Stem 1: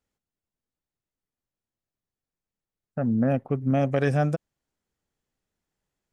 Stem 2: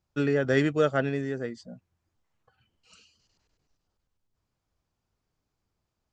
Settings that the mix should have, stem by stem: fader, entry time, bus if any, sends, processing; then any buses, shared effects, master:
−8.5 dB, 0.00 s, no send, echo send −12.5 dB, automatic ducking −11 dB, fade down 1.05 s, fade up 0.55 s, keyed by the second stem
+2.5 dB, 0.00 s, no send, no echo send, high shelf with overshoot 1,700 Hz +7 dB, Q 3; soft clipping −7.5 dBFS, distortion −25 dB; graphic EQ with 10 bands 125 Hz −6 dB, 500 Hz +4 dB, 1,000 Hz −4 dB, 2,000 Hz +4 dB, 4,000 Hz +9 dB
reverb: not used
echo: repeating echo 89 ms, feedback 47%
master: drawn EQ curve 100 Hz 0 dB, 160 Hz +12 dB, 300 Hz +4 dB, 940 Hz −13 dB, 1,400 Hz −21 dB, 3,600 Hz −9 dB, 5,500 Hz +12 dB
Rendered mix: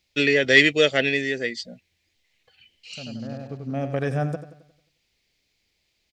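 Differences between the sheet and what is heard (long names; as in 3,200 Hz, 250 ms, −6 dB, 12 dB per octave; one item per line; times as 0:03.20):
stem 1 −8.5 dB → −2.5 dB
master: missing drawn EQ curve 100 Hz 0 dB, 160 Hz +12 dB, 300 Hz +4 dB, 940 Hz −13 dB, 1,400 Hz −21 dB, 3,600 Hz −9 dB, 5,500 Hz +12 dB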